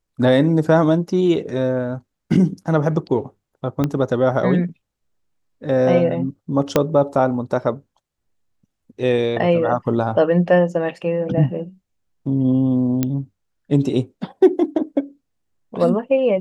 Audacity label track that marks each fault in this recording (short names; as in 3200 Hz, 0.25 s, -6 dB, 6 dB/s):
3.840000	3.840000	pop -8 dBFS
6.760000	6.760000	pop -2 dBFS
13.030000	13.030000	pop -6 dBFS